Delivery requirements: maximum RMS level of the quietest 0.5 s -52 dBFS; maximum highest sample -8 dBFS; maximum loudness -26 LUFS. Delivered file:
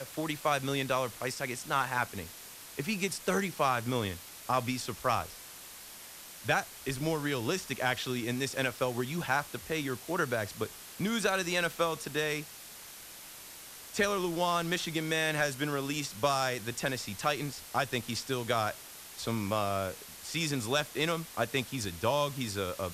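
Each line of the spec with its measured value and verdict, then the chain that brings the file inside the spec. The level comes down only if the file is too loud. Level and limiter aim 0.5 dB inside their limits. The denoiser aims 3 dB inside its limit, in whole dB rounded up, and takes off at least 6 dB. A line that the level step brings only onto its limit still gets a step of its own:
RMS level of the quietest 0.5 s -48 dBFS: fail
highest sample -15.5 dBFS: OK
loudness -32.0 LUFS: OK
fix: denoiser 7 dB, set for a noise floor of -48 dBFS

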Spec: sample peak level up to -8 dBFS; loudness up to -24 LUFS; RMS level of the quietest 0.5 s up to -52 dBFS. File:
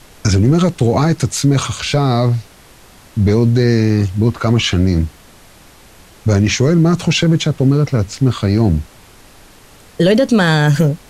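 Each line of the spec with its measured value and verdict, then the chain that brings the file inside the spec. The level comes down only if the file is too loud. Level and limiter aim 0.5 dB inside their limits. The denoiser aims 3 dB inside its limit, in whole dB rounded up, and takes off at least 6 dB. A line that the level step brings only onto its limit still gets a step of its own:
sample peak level -4.0 dBFS: fail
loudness -14.5 LUFS: fail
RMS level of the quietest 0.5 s -43 dBFS: fail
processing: gain -10 dB

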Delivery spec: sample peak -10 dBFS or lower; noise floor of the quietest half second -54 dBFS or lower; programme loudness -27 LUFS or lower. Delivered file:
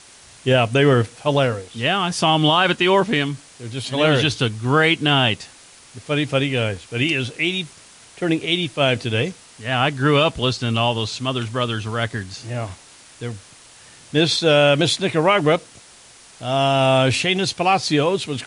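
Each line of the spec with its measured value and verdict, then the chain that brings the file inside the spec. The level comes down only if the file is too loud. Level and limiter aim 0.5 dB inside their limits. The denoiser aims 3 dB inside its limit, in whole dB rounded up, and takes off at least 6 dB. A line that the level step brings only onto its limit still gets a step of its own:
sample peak -5.5 dBFS: fail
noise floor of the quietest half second -47 dBFS: fail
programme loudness -19.0 LUFS: fail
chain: gain -8.5 dB

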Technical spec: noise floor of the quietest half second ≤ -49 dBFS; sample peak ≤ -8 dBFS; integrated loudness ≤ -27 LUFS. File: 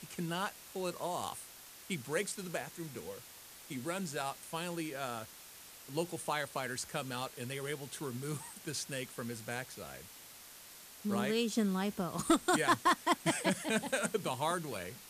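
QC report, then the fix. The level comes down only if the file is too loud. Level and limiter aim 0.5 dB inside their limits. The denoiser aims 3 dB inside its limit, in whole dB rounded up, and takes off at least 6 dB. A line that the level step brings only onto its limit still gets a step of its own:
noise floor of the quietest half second -54 dBFS: OK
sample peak -19.5 dBFS: OK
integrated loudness -36.5 LUFS: OK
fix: none

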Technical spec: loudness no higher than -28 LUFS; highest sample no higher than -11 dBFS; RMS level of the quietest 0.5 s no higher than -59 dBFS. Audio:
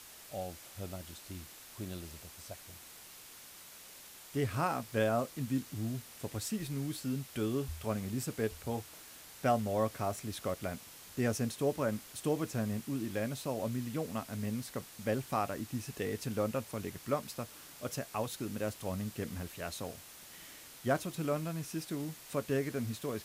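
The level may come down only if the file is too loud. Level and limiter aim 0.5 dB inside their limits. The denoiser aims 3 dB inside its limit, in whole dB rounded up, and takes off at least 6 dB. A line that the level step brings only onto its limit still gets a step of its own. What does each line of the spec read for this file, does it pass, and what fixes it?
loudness -37.0 LUFS: OK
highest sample -17.5 dBFS: OK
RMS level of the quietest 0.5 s -53 dBFS: fail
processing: denoiser 9 dB, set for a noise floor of -53 dBFS

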